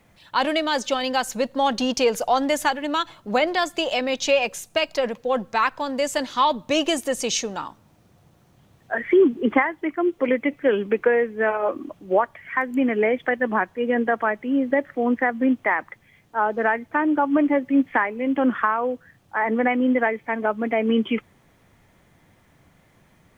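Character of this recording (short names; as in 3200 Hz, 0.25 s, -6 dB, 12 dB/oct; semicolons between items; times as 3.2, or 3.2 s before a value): a quantiser's noise floor 12-bit, dither none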